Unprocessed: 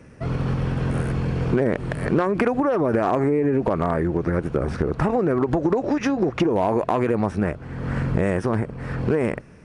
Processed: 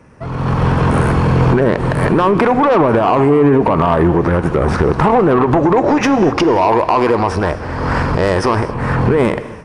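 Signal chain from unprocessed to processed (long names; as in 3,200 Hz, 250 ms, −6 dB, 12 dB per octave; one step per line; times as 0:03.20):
parametric band 970 Hz +9.5 dB 0.8 octaves
brickwall limiter −13 dBFS, peak gain reduction 8.5 dB
soft clipping −17.5 dBFS, distortion −16 dB
reverb whose tail is shaped and stops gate 280 ms flat, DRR 11.5 dB
automatic gain control gain up to 13.5 dB
0:06.33–0:08.74: thirty-one-band graphic EQ 125 Hz −8 dB, 200 Hz −10 dB, 5,000 Hz +11 dB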